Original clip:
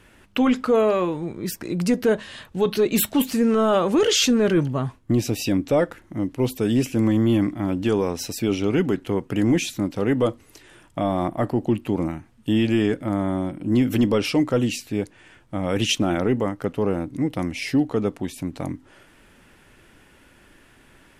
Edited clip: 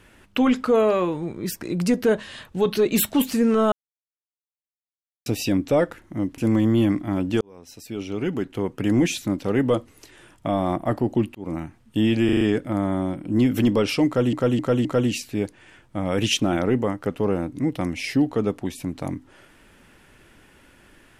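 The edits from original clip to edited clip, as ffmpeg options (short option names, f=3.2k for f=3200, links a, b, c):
-filter_complex "[0:a]asplit=13[a][b][c][d][e][f][g][h][i][j][k][l][m];[a]atrim=end=3.72,asetpts=PTS-STARTPTS,afade=t=out:st=3.716:d=0.004:c=hsin[n];[b]atrim=start=3.72:end=5.26,asetpts=PTS-STARTPTS,volume=0[o];[c]atrim=start=5.26:end=6.382,asetpts=PTS-STARTPTS,afade=t=in:d=0.004:c=hsin[p];[d]atrim=start=6.898:end=7.93,asetpts=PTS-STARTPTS,afade=t=out:st=1.028:d=0.004:c=hsin[q];[e]atrim=start=7.93:end=11.87,asetpts=PTS-STARTPTS,afade=t=in:d=1.53,afade=t=out:st=3.936:d=0.004:c=hsin[r];[f]atrim=start=11.87:end=12.812,asetpts=PTS-STARTPTS,afade=t=in:d=0.27[s];[g]atrim=start=12.768:end=12.812[t];[h]atrim=start=12.768:end=12.812[u];[i]atrim=start=12.768:end=12.812[v];[j]atrim=start=12.768:end=14.692[w];[k]atrim=start=14.428:end=14.692[x];[l]atrim=start=14.428:end=14.692[y];[m]atrim=start=14.428[z];[n][o][p]concat=n=3:v=0:a=1[aa];[q][r][s]concat=n=3:v=0:a=1[ab];[aa][ab]acrossfade=d=0.004:c1=hsin:c2=hsin[ac];[ac][t]acrossfade=d=0.004:c1=hsin:c2=hsin[ad];[ad][u]acrossfade=d=0.004:c1=hsin:c2=hsin[ae];[ae][v]acrossfade=d=0.004:c1=hsin:c2=hsin[af];[af][w]acrossfade=d=0.004:c1=hsin:c2=hsin[ag];[ag][x]acrossfade=d=0.004:c1=hsin:c2=hsin[ah];[ah][y]acrossfade=d=0.004:c1=hsin:c2=hsin[ai];[ai][z]acrossfade=d=0.004:c1=hsin:c2=hsin"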